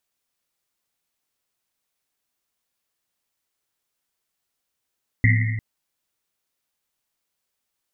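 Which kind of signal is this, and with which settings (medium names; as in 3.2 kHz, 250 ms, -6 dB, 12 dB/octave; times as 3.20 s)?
Risset drum length 0.35 s, pitch 110 Hz, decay 1.96 s, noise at 2 kHz, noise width 280 Hz, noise 30%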